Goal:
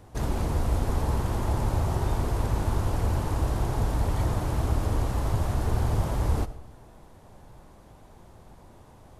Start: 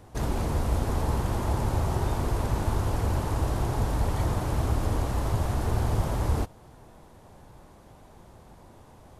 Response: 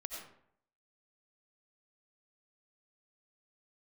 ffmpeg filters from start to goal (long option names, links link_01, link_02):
-filter_complex "[0:a]asplit=2[link_01][link_02];[1:a]atrim=start_sample=2205,lowshelf=frequency=170:gain=9[link_03];[link_02][link_03]afir=irnorm=-1:irlink=0,volume=-10dB[link_04];[link_01][link_04]amix=inputs=2:normalize=0,volume=-2.5dB"